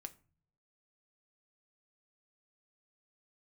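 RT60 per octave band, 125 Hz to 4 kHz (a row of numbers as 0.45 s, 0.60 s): 0.95 s, 0.70 s, 0.40 s, 0.40 s, 0.35 s, 0.25 s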